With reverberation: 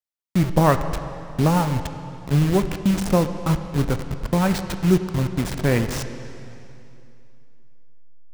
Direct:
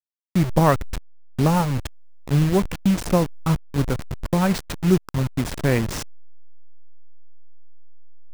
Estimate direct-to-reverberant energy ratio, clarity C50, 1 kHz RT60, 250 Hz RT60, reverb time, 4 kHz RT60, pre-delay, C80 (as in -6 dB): 8.5 dB, 9.5 dB, 2.8 s, 2.8 s, 2.8 s, 2.6 s, 6 ms, 10.5 dB